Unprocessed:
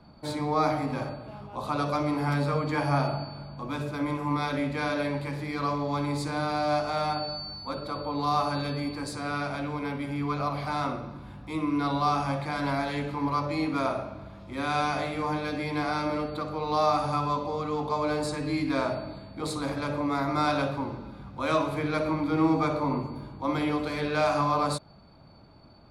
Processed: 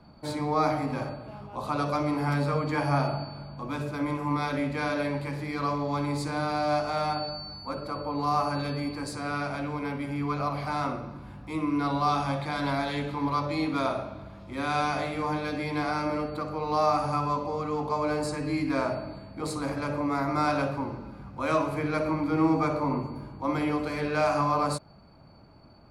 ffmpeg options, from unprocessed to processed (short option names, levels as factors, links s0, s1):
-af "asetnsamples=n=441:p=0,asendcmd='7.29 equalizer g -14.5;8.59 equalizer g -5.5;12.09 equalizer g 5;14.22 equalizer g -2;15.91 equalizer g -11',equalizer=f=3600:t=o:w=0.27:g=-4"